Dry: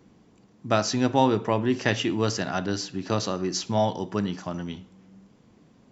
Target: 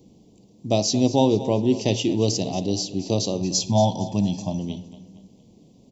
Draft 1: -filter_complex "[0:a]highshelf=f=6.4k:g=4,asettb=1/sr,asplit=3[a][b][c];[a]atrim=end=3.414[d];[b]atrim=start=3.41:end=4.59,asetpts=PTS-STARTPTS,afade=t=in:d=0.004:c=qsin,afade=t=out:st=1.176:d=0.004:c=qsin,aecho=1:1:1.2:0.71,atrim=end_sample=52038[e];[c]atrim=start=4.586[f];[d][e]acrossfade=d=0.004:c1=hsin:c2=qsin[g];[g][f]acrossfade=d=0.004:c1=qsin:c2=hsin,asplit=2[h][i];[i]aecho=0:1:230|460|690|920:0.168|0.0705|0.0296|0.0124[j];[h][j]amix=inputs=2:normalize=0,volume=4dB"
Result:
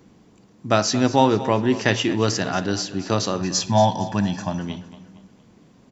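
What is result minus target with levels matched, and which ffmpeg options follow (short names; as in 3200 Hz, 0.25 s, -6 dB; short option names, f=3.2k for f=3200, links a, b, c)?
2000 Hz band +12.0 dB
-filter_complex "[0:a]asuperstop=centerf=1500:order=4:qfactor=0.6,highshelf=f=6.4k:g=4,asettb=1/sr,asplit=3[a][b][c];[a]atrim=end=3.414[d];[b]atrim=start=3.41:end=4.59,asetpts=PTS-STARTPTS,afade=t=in:d=0.004:c=qsin,afade=t=out:st=1.176:d=0.004:c=qsin,aecho=1:1:1.2:0.71,atrim=end_sample=52038[e];[c]atrim=start=4.586[f];[d][e]acrossfade=d=0.004:c1=hsin:c2=qsin[g];[g][f]acrossfade=d=0.004:c1=qsin:c2=hsin,asplit=2[h][i];[i]aecho=0:1:230|460|690|920:0.168|0.0705|0.0296|0.0124[j];[h][j]amix=inputs=2:normalize=0,volume=4dB"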